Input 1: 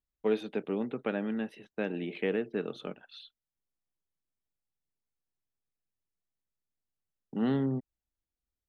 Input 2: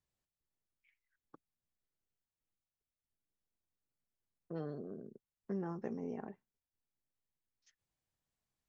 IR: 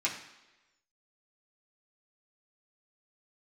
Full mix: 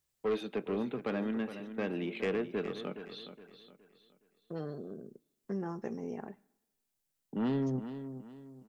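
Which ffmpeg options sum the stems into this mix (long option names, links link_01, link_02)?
-filter_complex "[0:a]highpass=frequency=110:width=0.5412,highpass=frequency=110:width=1.3066,asoftclip=type=tanh:threshold=-26.5dB,volume=0.5dB,asplit=3[link_01][link_02][link_03];[link_02]volume=-23.5dB[link_04];[link_03]volume=-11dB[link_05];[1:a]highshelf=frequency=4200:gain=9.5,volume=2dB,asplit=2[link_06][link_07];[link_07]volume=-21.5dB[link_08];[2:a]atrim=start_sample=2205[link_09];[link_04][link_08]amix=inputs=2:normalize=0[link_10];[link_10][link_09]afir=irnorm=-1:irlink=0[link_11];[link_05]aecho=0:1:417|834|1251|1668|2085:1|0.35|0.122|0.0429|0.015[link_12];[link_01][link_06][link_11][link_12]amix=inputs=4:normalize=0"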